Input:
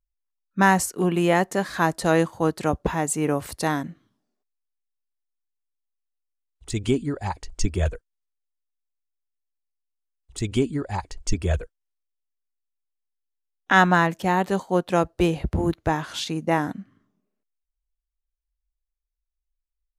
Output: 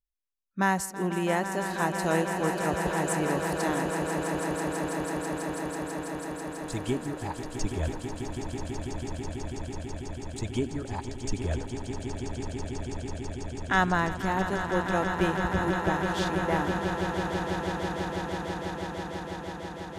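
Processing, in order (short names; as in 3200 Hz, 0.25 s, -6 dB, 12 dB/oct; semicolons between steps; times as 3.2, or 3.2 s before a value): swelling echo 0.164 s, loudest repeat 8, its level -10 dB; gain -7.5 dB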